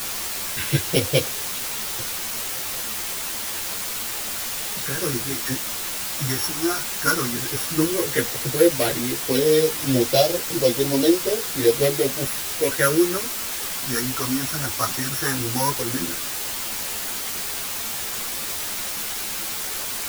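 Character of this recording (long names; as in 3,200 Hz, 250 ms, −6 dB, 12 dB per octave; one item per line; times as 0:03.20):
a buzz of ramps at a fixed pitch in blocks of 8 samples
phaser sweep stages 4, 0.12 Hz, lowest notch 510–1,500 Hz
a quantiser's noise floor 6 bits, dither triangular
a shimmering, thickened sound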